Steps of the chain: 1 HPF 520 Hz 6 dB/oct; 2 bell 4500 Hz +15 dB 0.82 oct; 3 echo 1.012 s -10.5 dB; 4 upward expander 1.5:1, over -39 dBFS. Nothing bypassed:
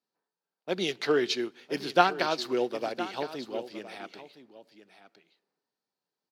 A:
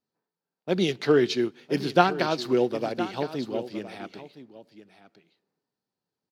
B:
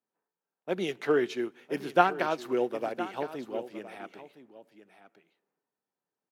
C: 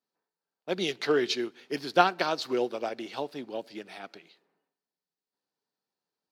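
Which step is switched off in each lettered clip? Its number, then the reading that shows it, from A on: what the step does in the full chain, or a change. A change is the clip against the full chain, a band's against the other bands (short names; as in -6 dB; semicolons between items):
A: 1, 125 Hz band +10.5 dB; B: 2, 4 kHz band -9.5 dB; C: 3, momentary loudness spread change +1 LU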